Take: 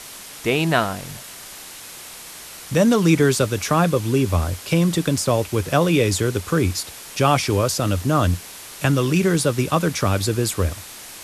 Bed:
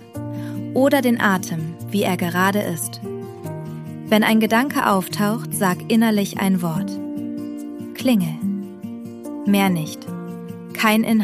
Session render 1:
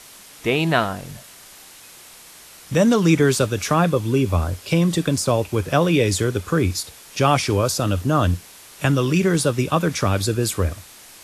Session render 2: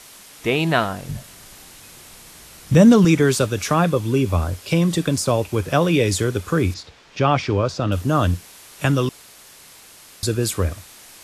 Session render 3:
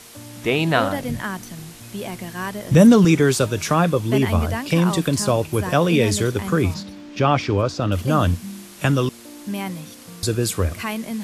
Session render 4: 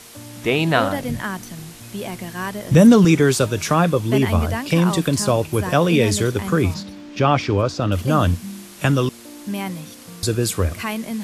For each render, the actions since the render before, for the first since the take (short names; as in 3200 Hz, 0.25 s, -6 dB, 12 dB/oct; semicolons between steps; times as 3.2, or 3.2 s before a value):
noise print and reduce 6 dB
1.09–3.05 low shelf 250 Hz +11.5 dB; 6.74–7.92 air absorption 170 m; 9.09–10.23 room tone
add bed -11 dB
gain +1 dB; limiter -2 dBFS, peak gain reduction 1.5 dB